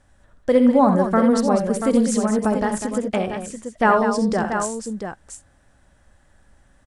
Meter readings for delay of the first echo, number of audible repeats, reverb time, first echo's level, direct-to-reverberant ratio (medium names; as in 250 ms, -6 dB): 65 ms, 3, no reverb, -9.5 dB, no reverb